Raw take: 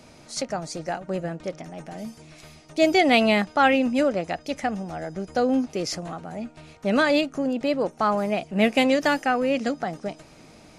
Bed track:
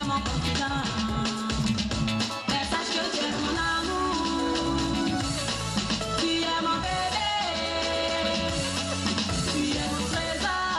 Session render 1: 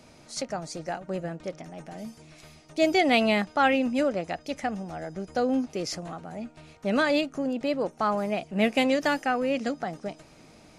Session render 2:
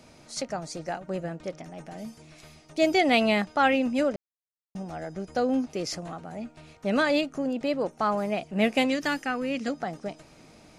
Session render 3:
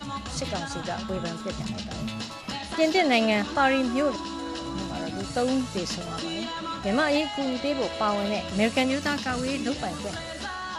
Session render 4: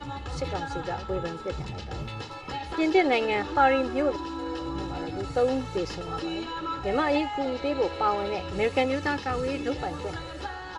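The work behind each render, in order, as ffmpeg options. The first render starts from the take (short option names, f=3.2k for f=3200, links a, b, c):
-af "volume=-3.5dB"
-filter_complex "[0:a]asettb=1/sr,asplit=3[a][b][c];[a]atrim=end=8.854[d];[b]atrim=start=8.85:end=9.68,asetpts=PTS-STARTPTS,afade=t=in:d=0.004:c=qsin,afade=t=out:st=0.826:d=0.004:c=qsin,equalizer=f=660:w=1.5:g=-8[e];[c]atrim=start=9.676[f];[d][e]acrossfade=d=0.004:c1=hsin:c2=qsin[g];[g][f]acrossfade=d=0.004:c1=qsin:c2=hsin,asplit=3[h][i][j];[h]atrim=end=4.16,asetpts=PTS-STARTPTS,afade=t=out:st=4.156:d=0.004:c=hsin[k];[i]atrim=start=4.16:end=4.75,asetpts=PTS-STARTPTS,volume=0[l];[j]atrim=start=4.75,asetpts=PTS-STARTPTS,afade=t=in:d=0.004:c=hsin[m];[k][l][m]concat=n=3:v=0:a=1"
-filter_complex "[1:a]volume=-7dB[a];[0:a][a]amix=inputs=2:normalize=0"
-af "lowpass=f=1.5k:p=1,aecho=1:1:2.3:0.8"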